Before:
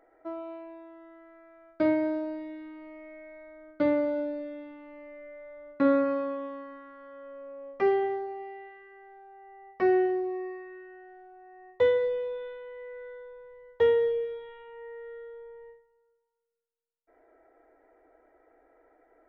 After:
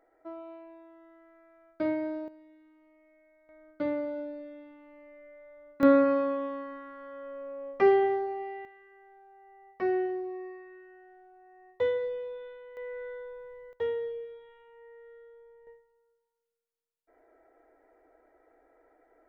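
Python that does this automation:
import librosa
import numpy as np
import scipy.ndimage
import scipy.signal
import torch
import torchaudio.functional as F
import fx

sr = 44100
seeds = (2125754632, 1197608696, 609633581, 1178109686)

y = fx.gain(x, sr, db=fx.steps((0.0, -5.0), (2.28, -16.5), (3.49, -6.0), (5.83, 3.0), (8.65, -5.0), (12.77, 3.0), (13.73, -9.0), (15.67, -1.5)))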